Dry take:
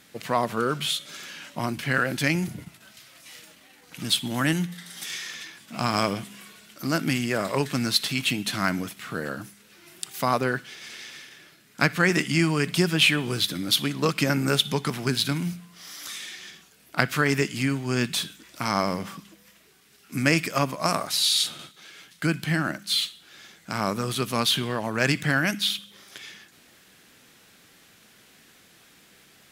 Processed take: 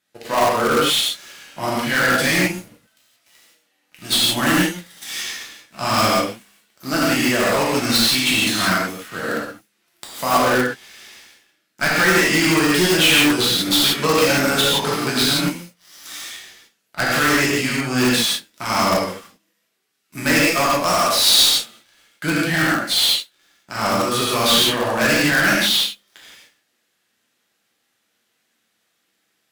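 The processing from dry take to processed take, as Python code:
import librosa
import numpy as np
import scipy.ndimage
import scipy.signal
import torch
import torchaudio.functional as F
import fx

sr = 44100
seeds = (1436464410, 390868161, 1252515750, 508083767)

p1 = fx.tracing_dist(x, sr, depth_ms=0.034)
p2 = fx.low_shelf(p1, sr, hz=210.0, db=-10.0)
p3 = fx.leveller(p2, sr, passes=3)
p4 = fx.rev_gated(p3, sr, seeds[0], gate_ms=200, shape='flat', drr_db=-6.5)
p5 = (np.mod(10.0 ** (3.5 / 20.0) * p4 + 1.0, 2.0) - 1.0) / 10.0 ** (3.5 / 20.0)
p6 = p4 + (p5 * librosa.db_to_amplitude(-7.5))
p7 = fx.upward_expand(p6, sr, threshold_db=-23.0, expansion=1.5)
y = p7 * librosa.db_to_amplitude(-8.0)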